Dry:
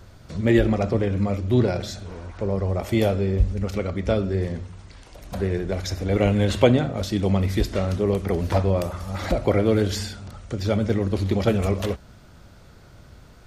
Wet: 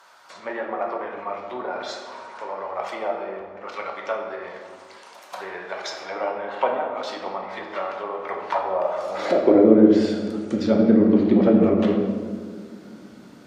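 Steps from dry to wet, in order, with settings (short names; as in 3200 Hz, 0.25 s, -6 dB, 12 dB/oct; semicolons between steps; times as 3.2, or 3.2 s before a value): 4.53–5.9 short-mantissa float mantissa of 4-bit; treble ducked by the level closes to 1100 Hz, closed at -16.5 dBFS; notches 50/100/150/200 Hz; high-pass sweep 960 Hz -> 230 Hz, 8.61–9.76; on a send: reverb RT60 1.9 s, pre-delay 3 ms, DRR 1 dB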